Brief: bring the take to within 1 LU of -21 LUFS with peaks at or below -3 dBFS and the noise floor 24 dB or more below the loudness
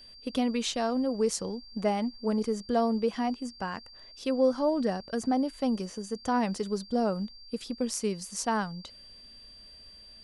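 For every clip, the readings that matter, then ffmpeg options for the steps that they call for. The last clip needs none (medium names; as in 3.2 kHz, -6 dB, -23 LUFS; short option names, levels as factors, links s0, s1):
steady tone 4.7 kHz; tone level -49 dBFS; loudness -30.0 LUFS; peak level -14.0 dBFS; loudness target -21.0 LUFS
-> -af "bandreject=f=4700:w=30"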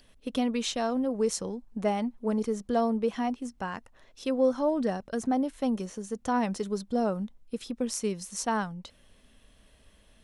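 steady tone not found; loudness -30.0 LUFS; peak level -14.0 dBFS; loudness target -21.0 LUFS
-> -af "volume=2.82"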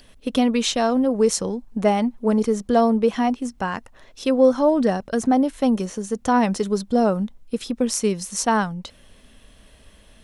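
loudness -21.0 LUFS; peak level -5.0 dBFS; noise floor -52 dBFS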